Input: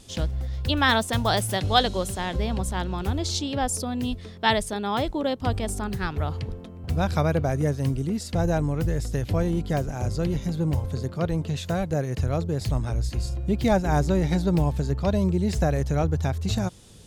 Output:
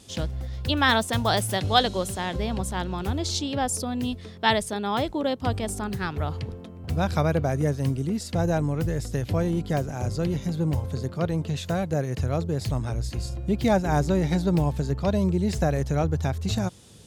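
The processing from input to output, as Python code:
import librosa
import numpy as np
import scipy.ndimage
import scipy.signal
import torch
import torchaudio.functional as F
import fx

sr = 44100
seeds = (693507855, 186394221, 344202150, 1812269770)

y = scipy.signal.sosfilt(scipy.signal.butter(2, 69.0, 'highpass', fs=sr, output='sos'), x)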